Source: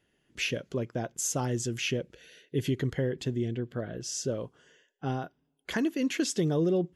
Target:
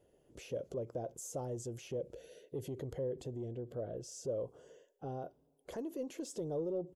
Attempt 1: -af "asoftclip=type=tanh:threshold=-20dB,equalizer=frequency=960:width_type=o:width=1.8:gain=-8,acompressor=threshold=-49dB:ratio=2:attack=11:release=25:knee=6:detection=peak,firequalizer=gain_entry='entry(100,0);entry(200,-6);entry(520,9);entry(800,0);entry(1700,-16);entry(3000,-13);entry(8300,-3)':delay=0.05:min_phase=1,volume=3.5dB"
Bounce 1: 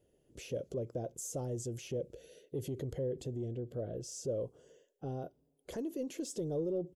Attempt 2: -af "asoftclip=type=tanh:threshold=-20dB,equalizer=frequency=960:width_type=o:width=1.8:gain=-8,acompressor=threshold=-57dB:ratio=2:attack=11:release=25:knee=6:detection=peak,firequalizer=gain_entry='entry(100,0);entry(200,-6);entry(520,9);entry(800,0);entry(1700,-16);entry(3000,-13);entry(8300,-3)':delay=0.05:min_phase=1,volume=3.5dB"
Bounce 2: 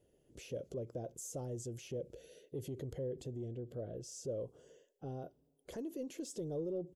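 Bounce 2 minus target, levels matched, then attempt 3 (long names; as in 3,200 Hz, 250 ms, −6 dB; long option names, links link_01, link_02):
1,000 Hz band −4.0 dB
-af "asoftclip=type=tanh:threshold=-20dB,acompressor=threshold=-57dB:ratio=2:attack=11:release=25:knee=6:detection=peak,firequalizer=gain_entry='entry(100,0);entry(200,-6);entry(520,9);entry(800,0);entry(1700,-16);entry(3000,-13);entry(8300,-3)':delay=0.05:min_phase=1,volume=3.5dB"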